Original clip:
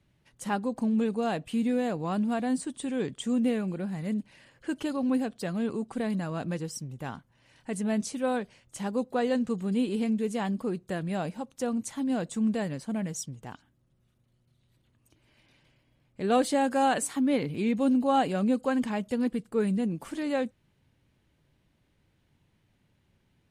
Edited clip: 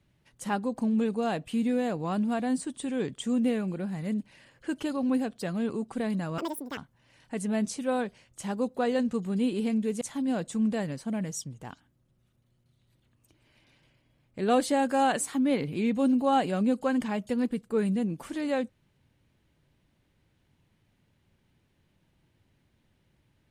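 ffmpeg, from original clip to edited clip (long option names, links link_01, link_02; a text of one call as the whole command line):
ffmpeg -i in.wav -filter_complex "[0:a]asplit=4[link_01][link_02][link_03][link_04];[link_01]atrim=end=6.384[link_05];[link_02]atrim=start=6.38:end=7.13,asetpts=PTS-STARTPTS,asetrate=84231,aresample=44100[link_06];[link_03]atrim=start=7.126:end=10.372[link_07];[link_04]atrim=start=11.828[link_08];[link_05][link_06]acrossfade=duration=0.004:curve1=hsin:curve2=hsin[link_09];[link_09][link_07]acrossfade=duration=0.004:curve1=hsin:curve2=hsin[link_10];[link_10][link_08]acrossfade=duration=0.004:curve1=hsin:curve2=hsin" out.wav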